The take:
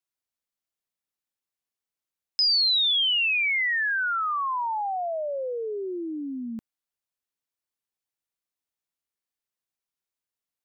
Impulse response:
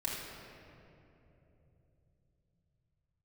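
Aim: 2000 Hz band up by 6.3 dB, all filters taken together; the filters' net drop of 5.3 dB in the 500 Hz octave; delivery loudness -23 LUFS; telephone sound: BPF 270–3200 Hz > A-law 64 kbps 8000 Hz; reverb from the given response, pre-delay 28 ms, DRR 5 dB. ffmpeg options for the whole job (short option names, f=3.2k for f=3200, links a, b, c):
-filter_complex "[0:a]equalizer=f=500:t=o:g=-7,equalizer=f=2k:t=o:g=9,asplit=2[a][b];[1:a]atrim=start_sample=2205,adelay=28[c];[b][c]afir=irnorm=-1:irlink=0,volume=-9dB[d];[a][d]amix=inputs=2:normalize=0,highpass=270,lowpass=3.2k,volume=-5dB" -ar 8000 -c:a pcm_alaw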